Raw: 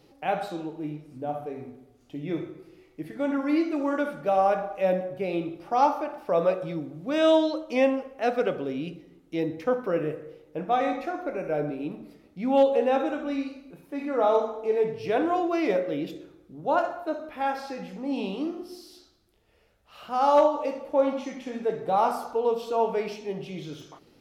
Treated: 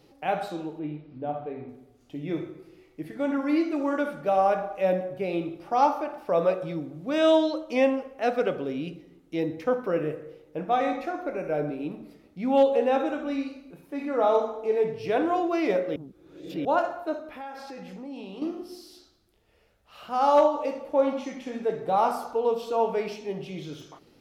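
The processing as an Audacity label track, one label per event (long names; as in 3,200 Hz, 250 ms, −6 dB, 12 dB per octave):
0.790000	1.690000	Butterworth low-pass 4,100 Hz
15.960000	16.650000	reverse
17.190000	18.420000	downward compressor 4 to 1, threshold −37 dBFS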